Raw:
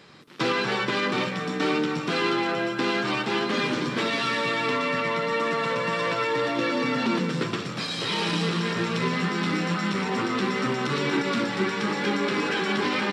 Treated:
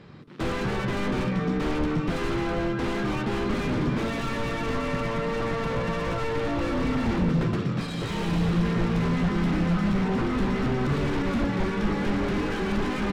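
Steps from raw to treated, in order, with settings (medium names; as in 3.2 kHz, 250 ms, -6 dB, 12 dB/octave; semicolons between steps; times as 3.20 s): self-modulated delay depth 0.16 ms; wavefolder -24 dBFS; RIAA curve playback; trim -1 dB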